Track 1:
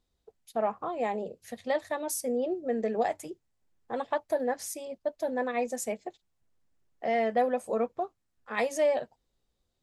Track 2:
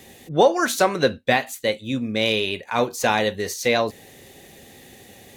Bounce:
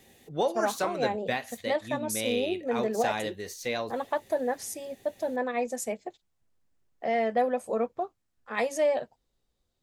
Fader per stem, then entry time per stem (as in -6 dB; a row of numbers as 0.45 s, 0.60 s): +0.5 dB, -11.5 dB; 0.00 s, 0.00 s